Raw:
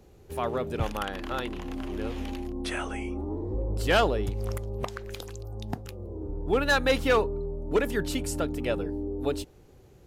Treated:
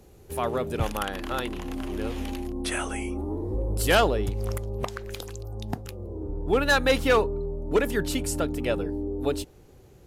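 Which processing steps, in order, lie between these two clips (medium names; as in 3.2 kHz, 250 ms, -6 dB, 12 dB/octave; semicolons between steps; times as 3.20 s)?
peaking EQ 11 kHz +7.5 dB 1.1 oct, from 2.72 s +14 dB, from 3.95 s +3 dB; trim +2 dB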